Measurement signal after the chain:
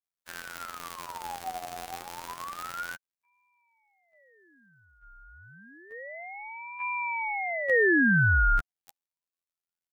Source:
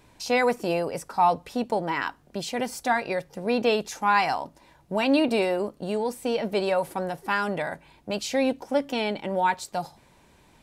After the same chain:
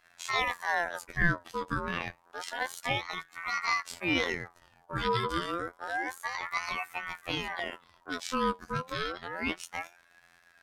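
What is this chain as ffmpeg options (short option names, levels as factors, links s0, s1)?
-af "afftfilt=real='hypot(re,im)*cos(PI*b)':imag='0':win_size=2048:overlap=0.75,asubboost=boost=3:cutoff=61,aeval=exprs='val(0)*sin(2*PI*1200*n/s+1200*0.4/0.29*sin(2*PI*0.29*n/s))':c=same"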